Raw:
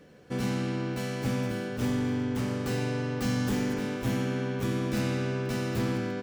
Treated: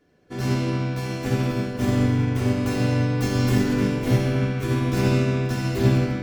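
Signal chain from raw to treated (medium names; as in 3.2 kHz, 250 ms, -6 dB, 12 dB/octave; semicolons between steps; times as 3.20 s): simulated room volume 3500 m³, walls mixed, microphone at 3.2 m; upward expansion 1.5:1, over -49 dBFS; trim +4.5 dB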